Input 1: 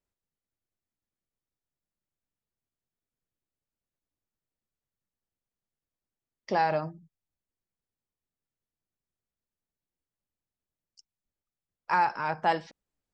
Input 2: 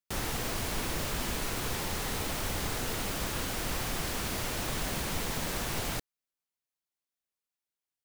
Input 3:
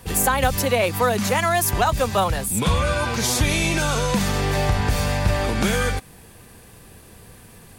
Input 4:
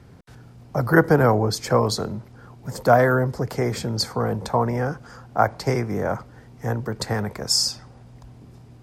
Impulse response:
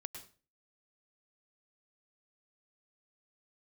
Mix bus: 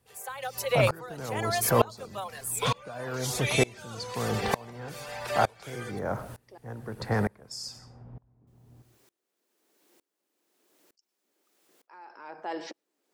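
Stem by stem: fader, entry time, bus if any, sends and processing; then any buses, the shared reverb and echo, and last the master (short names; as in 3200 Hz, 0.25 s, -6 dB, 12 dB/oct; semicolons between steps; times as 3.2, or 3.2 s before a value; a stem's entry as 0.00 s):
+2.5 dB, 0.00 s, muted 6.58–8.47, send -12 dB, ladder high-pass 290 Hz, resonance 50%; fast leveller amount 50%
-12.0 dB, 0.95 s, no send, auto duck -9 dB, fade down 1.85 s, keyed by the first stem
-1.5 dB, 0.00 s, send -12 dB, reverb removal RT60 0.91 s; steep high-pass 400 Hz 72 dB/oct
-1.5 dB, 0.00 s, send -3.5 dB, low-pass opened by the level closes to 1000 Hz, open at -17 dBFS; limiter -13 dBFS, peak gain reduction 11 dB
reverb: on, RT60 0.35 s, pre-delay 96 ms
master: dB-ramp tremolo swelling 1.1 Hz, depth 27 dB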